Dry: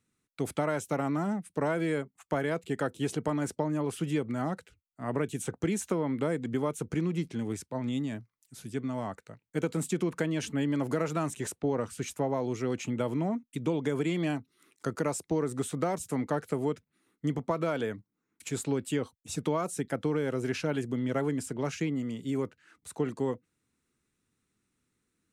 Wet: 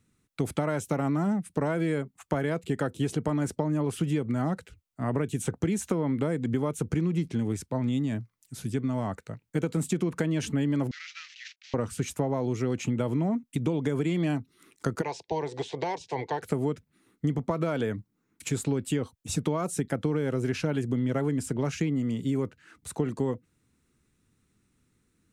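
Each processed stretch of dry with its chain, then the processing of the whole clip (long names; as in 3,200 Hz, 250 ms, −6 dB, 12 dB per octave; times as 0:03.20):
0:10.91–0:11.74: variable-slope delta modulation 32 kbit/s + Butterworth high-pass 1,900 Hz + high-frequency loss of the air 72 metres
0:15.01–0:16.41: ceiling on every frequency bin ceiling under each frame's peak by 13 dB + loudspeaker in its box 200–4,900 Hz, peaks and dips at 320 Hz −5 dB, 580 Hz −8 dB, 910 Hz +7 dB + phaser with its sweep stopped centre 530 Hz, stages 4
whole clip: low-shelf EQ 200 Hz +9 dB; downward compressor 2.5 to 1, threshold −31 dBFS; level +5 dB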